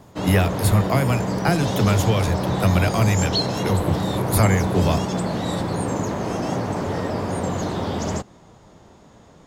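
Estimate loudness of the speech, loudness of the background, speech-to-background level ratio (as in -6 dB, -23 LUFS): -22.0 LUFS, -24.5 LUFS, 2.5 dB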